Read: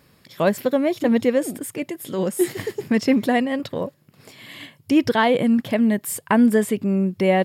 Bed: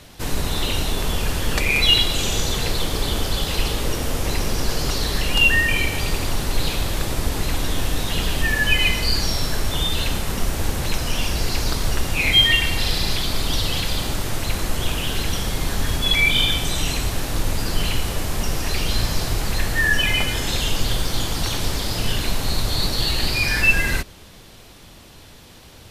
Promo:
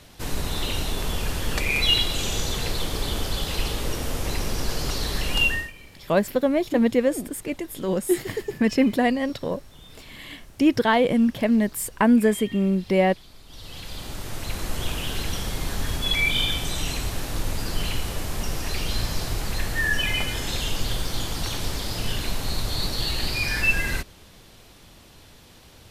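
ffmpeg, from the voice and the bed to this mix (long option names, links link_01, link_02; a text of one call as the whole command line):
ffmpeg -i stem1.wav -i stem2.wav -filter_complex "[0:a]adelay=5700,volume=-1.5dB[link_01];[1:a]volume=16.5dB,afade=type=out:start_time=5.41:duration=0.31:silence=0.0841395,afade=type=in:start_time=13.47:duration=1.31:silence=0.0891251[link_02];[link_01][link_02]amix=inputs=2:normalize=0" out.wav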